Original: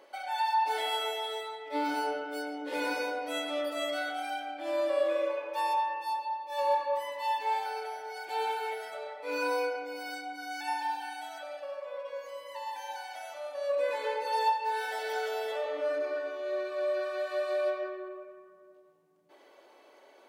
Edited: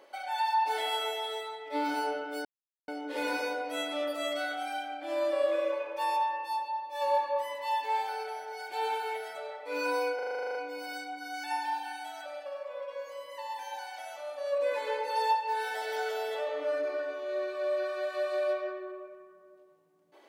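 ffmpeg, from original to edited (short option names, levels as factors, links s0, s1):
-filter_complex "[0:a]asplit=12[s0][s1][s2][s3][s4][s5][s6][s7][s8][s9][s10][s11];[s0]atrim=end=2.45,asetpts=PTS-STARTPTS,afade=t=out:st=2.446:d=0.004:c=hsin,apad=pad_dur=0.43[s12];[s1]atrim=start=2.45:end=9.762,asetpts=PTS-STARTPTS,afade=t=in:d=0.004:c=hsin[s13];[s2]atrim=start=9.718:end=9.762[s14];[s3]atrim=start=9.718:end=9.762[s15];[s4]atrim=start=9.718:end=9.762[s16];[s5]atrim=start=9.718:end=9.762[s17];[s6]atrim=start=9.718:end=9.762[s18];[s7]atrim=start=9.718:end=9.762[s19];[s8]atrim=start=9.718:end=9.762[s20];[s9]atrim=start=9.718:end=9.762[s21];[s10]atrim=start=9.718:end=9.762[s22];[s11]atrim=start=9.718[s23];[s12][s13]concat=n=2:v=0:a=1[s24];[s24][s14]acrossfade=d=0.004:c1=hsin:c2=hsin[s25];[s25][s15]acrossfade=d=0.004:c1=hsin:c2=hsin[s26];[s26][s16]acrossfade=d=0.004:c1=hsin:c2=hsin[s27];[s27][s17]acrossfade=d=0.004:c1=hsin:c2=hsin[s28];[s28][s18]acrossfade=d=0.004:c1=hsin:c2=hsin[s29];[s29][s19]acrossfade=d=0.004:c1=hsin:c2=hsin[s30];[s30][s20]acrossfade=d=0.004:c1=hsin:c2=hsin[s31];[s31][s21]acrossfade=d=0.004:c1=hsin:c2=hsin[s32];[s32][s22]acrossfade=d=0.004:c1=hsin:c2=hsin[s33];[s33][s23]acrossfade=d=0.004:c1=hsin:c2=hsin"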